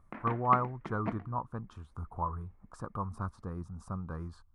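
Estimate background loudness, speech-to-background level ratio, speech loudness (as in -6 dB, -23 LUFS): -42.5 LUFS, 6.5 dB, -36.0 LUFS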